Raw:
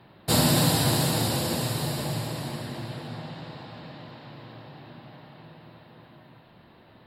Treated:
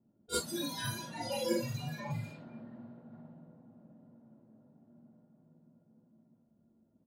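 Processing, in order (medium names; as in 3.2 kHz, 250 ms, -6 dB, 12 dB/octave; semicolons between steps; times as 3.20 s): compression 16:1, threshold -27 dBFS, peak gain reduction 11.5 dB; peaking EQ 620 Hz +5.5 dB 0.27 oct; small resonant body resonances 230/1400 Hz, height 16 dB, ringing for 75 ms; spectral noise reduction 27 dB; level-controlled noise filter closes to 390 Hz, open at -40 dBFS; hum notches 60/120/180/240 Hz; early reflections 46 ms -6 dB, 58 ms -7.5 dB; attacks held to a fixed rise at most 460 dB/s; trim +5.5 dB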